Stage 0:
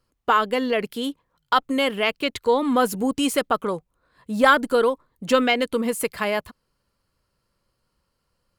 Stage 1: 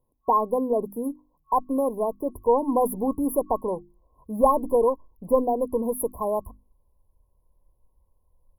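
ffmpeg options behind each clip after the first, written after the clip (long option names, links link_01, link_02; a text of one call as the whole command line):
ffmpeg -i in.wav -af "afftfilt=real='re*(1-between(b*sr/4096,1100,9900))':imag='im*(1-between(b*sr/4096,1100,9900))':win_size=4096:overlap=0.75,bandreject=frequency=50:width_type=h:width=6,bandreject=frequency=100:width_type=h:width=6,bandreject=frequency=150:width_type=h:width=6,bandreject=frequency=200:width_type=h:width=6,bandreject=frequency=250:width_type=h:width=6,bandreject=frequency=300:width_type=h:width=6,bandreject=frequency=350:width_type=h:width=6,asubboost=boost=8.5:cutoff=56" out.wav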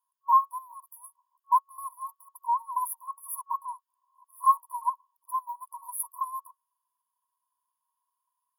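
ffmpeg -i in.wav -af "afftfilt=real='re*eq(mod(floor(b*sr/1024/910),2),1)':imag='im*eq(mod(floor(b*sr/1024/910),2),1)':win_size=1024:overlap=0.75,volume=2.5dB" out.wav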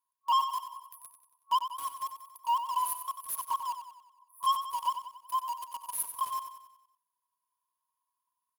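ffmpeg -i in.wav -filter_complex "[0:a]asplit=2[link_01][link_02];[link_02]acrusher=bits=5:mix=0:aa=0.000001,volume=-3dB[link_03];[link_01][link_03]amix=inputs=2:normalize=0,asoftclip=type=tanh:threshold=-18.5dB,aecho=1:1:93|186|279|372|465|558:0.335|0.167|0.0837|0.0419|0.0209|0.0105,volume=-3.5dB" out.wav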